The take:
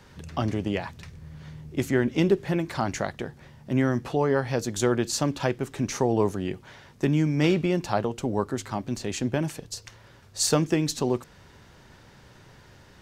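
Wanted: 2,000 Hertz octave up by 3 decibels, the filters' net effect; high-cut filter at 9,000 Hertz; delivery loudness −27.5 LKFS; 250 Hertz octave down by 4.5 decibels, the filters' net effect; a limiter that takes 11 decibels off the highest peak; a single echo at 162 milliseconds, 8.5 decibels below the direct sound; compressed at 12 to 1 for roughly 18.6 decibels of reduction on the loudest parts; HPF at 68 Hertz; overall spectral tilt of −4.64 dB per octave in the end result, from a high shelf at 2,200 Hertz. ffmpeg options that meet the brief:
ffmpeg -i in.wav -af "highpass=68,lowpass=9000,equalizer=frequency=250:width_type=o:gain=-6.5,equalizer=frequency=2000:width_type=o:gain=6.5,highshelf=frequency=2200:gain=-5,acompressor=threshold=-38dB:ratio=12,alimiter=level_in=9.5dB:limit=-24dB:level=0:latency=1,volume=-9.5dB,aecho=1:1:162:0.376,volume=18dB" out.wav

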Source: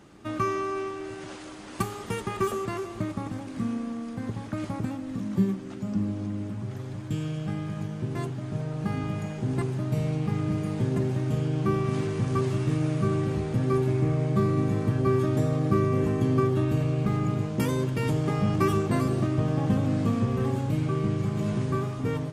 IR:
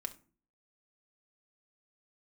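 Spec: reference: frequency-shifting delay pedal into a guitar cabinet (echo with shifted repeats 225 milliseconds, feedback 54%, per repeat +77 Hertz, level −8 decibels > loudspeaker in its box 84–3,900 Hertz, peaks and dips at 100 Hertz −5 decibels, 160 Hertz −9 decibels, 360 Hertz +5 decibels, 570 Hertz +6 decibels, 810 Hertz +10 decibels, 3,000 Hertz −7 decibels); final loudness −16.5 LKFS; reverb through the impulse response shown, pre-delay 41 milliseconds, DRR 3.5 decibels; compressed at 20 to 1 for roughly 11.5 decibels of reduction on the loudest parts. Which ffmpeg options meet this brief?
-filter_complex "[0:a]acompressor=threshold=-30dB:ratio=20,asplit=2[link_01][link_02];[1:a]atrim=start_sample=2205,adelay=41[link_03];[link_02][link_03]afir=irnorm=-1:irlink=0,volume=-2dB[link_04];[link_01][link_04]amix=inputs=2:normalize=0,asplit=7[link_05][link_06][link_07][link_08][link_09][link_10][link_11];[link_06]adelay=225,afreqshift=77,volume=-8dB[link_12];[link_07]adelay=450,afreqshift=154,volume=-13.4dB[link_13];[link_08]adelay=675,afreqshift=231,volume=-18.7dB[link_14];[link_09]adelay=900,afreqshift=308,volume=-24.1dB[link_15];[link_10]adelay=1125,afreqshift=385,volume=-29.4dB[link_16];[link_11]adelay=1350,afreqshift=462,volume=-34.8dB[link_17];[link_05][link_12][link_13][link_14][link_15][link_16][link_17]amix=inputs=7:normalize=0,highpass=84,equalizer=frequency=100:width_type=q:width=4:gain=-5,equalizer=frequency=160:width_type=q:width=4:gain=-9,equalizer=frequency=360:width_type=q:width=4:gain=5,equalizer=frequency=570:width_type=q:width=4:gain=6,equalizer=frequency=810:width_type=q:width=4:gain=10,equalizer=frequency=3000:width_type=q:width=4:gain=-7,lowpass=frequency=3900:width=0.5412,lowpass=frequency=3900:width=1.3066,volume=16dB"

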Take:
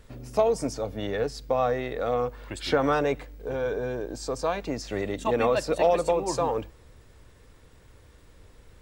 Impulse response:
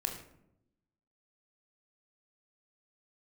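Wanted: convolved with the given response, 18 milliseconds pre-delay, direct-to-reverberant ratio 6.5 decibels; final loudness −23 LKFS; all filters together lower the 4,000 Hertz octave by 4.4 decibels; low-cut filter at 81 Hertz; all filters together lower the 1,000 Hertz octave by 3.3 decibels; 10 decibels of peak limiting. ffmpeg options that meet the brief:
-filter_complex "[0:a]highpass=81,equalizer=frequency=1000:width_type=o:gain=-4.5,equalizer=frequency=4000:width_type=o:gain=-5.5,alimiter=limit=-21.5dB:level=0:latency=1,asplit=2[link_01][link_02];[1:a]atrim=start_sample=2205,adelay=18[link_03];[link_02][link_03]afir=irnorm=-1:irlink=0,volume=-9dB[link_04];[link_01][link_04]amix=inputs=2:normalize=0,volume=8dB"

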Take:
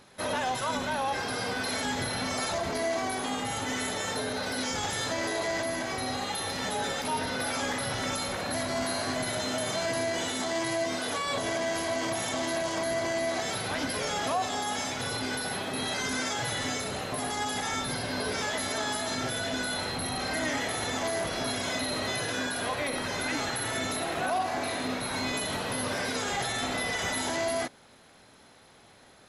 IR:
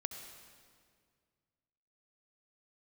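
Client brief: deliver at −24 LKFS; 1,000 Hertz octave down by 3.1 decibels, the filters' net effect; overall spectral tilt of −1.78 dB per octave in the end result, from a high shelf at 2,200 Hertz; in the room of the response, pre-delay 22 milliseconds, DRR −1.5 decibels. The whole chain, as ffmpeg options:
-filter_complex "[0:a]equalizer=frequency=1000:width_type=o:gain=-5.5,highshelf=frequency=2200:gain=5.5,asplit=2[link_01][link_02];[1:a]atrim=start_sample=2205,adelay=22[link_03];[link_02][link_03]afir=irnorm=-1:irlink=0,volume=2.5dB[link_04];[link_01][link_04]amix=inputs=2:normalize=0,volume=1dB"

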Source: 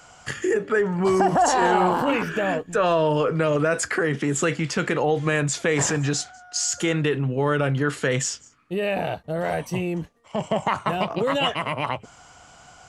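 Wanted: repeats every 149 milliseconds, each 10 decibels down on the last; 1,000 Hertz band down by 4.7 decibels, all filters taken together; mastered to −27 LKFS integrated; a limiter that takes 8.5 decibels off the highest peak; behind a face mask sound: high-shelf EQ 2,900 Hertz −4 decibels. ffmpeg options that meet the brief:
ffmpeg -i in.wav -af "equalizer=frequency=1000:width_type=o:gain=-6,alimiter=limit=-18dB:level=0:latency=1,highshelf=frequency=2900:gain=-4,aecho=1:1:149|298|447|596:0.316|0.101|0.0324|0.0104,volume=1dB" out.wav

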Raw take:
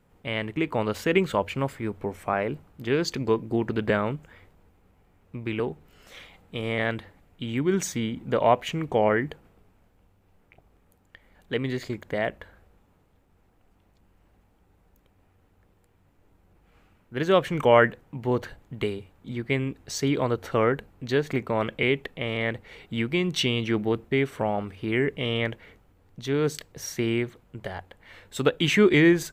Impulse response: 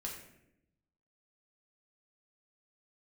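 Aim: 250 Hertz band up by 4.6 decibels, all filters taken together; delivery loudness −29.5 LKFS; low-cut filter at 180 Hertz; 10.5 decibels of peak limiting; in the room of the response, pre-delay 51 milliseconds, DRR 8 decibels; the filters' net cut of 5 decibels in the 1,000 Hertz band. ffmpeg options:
-filter_complex "[0:a]highpass=180,equalizer=frequency=250:width_type=o:gain=8,equalizer=frequency=1000:width_type=o:gain=-7.5,alimiter=limit=-16dB:level=0:latency=1,asplit=2[link_01][link_02];[1:a]atrim=start_sample=2205,adelay=51[link_03];[link_02][link_03]afir=irnorm=-1:irlink=0,volume=-7dB[link_04];[link_01][link_04]amix=inputs=2:normalize=0,volume=-2dB"

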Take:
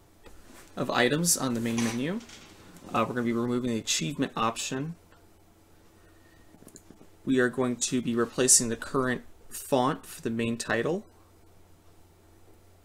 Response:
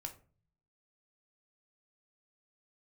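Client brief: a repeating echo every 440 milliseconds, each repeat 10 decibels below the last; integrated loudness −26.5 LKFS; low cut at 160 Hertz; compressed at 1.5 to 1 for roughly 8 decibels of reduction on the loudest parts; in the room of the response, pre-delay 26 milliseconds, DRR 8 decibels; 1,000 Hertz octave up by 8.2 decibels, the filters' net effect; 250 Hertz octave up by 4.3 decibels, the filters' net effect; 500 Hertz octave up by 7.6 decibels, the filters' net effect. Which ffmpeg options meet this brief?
-filter_complex "[0:a]highpass=160,equalizer=frequency=250:width_type=o:gain=3.5,equalizer=frequency=500:width_type=o:gain=6.5,equalizer=frequency=1000:width_type=o:gain=8.5,acompressor=threshold=-35dB:ratio=1.5,aecho=1:1:440|880|1320|1760:0.316|0.101|0.0324|0.0104,asplit=2[link_01][link_02];[1:a]atrim=start_sample=2205,adelay=26[link_03];[link_02][link_03]afir=irnorm=-1:irlink=0,volume=-5dB[link_04];[link_01][link_04]amix=inputs=2:normalize=0,volume=2.5dB"

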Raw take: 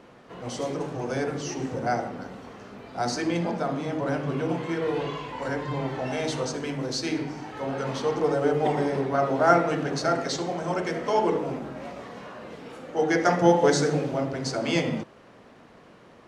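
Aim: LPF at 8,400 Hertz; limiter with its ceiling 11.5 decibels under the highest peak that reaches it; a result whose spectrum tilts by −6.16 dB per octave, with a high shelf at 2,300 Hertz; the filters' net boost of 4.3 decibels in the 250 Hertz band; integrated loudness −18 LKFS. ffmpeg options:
ffmpeg -i in.wav -af "lowpass=8400,equalizer=frequency=250:width_type=o:gain=6,highshelf=frequency=2300:gain=-4.5,volume=9.5dB,alimiter=limit=-7.5dB:level=0:latency=1" out.wav

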